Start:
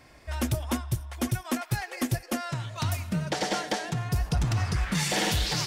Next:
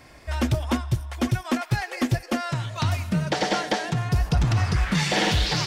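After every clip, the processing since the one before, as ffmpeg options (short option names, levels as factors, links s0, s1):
-filter_complex "[0:a]acrossover=split=5800[s0][s1];[s1]acompressor=threshold=0.00316:ratio=4:attack=1:release=60[s2];[s0][s2]amix=inputs=2:normalize=0,volume=1.78"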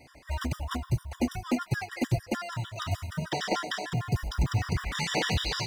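-af "bandreject=f=50:t=h:w=6,bandreject=f=100:t=h:w=6,bandreject=f=150:t=h:w=6,bandreject=f=200:t=h:w=6,acrusher=bits=8:mode=log:mix=0:aa=0.000001,afftfilt=real='re*gt(sin(2*PI*6.6*pts/sr)*(1-2*mod(floor(b*sr/1024/970),2)),0)':imag='im*gt(sin(2*PI*6.6*pts/sr)*(1-2*mod(floor(b*sr/1024/970),2)),0)':win_size=1024:overlap=0.75,volume=0.75"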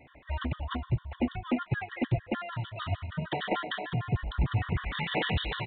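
-af "aresample=8000,aresample=44100,volume=0.891"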